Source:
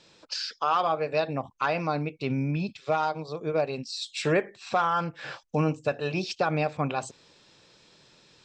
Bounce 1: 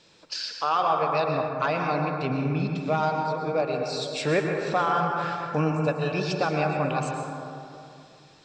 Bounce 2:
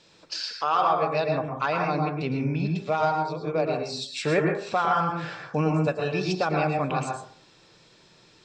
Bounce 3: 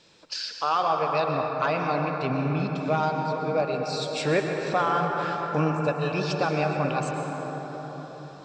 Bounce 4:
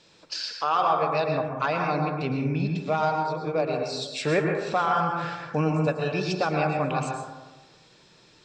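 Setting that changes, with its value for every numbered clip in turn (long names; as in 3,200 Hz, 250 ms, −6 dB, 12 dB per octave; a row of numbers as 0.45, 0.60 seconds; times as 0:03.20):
dense smooth reverb, RT60: 2.5, 0.5, 5.3, 1.1 seconds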